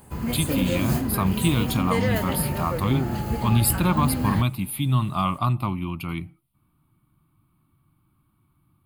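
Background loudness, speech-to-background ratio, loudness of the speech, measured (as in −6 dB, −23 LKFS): −27.0 LKFS, 2.0 dB, −25.0 LKFS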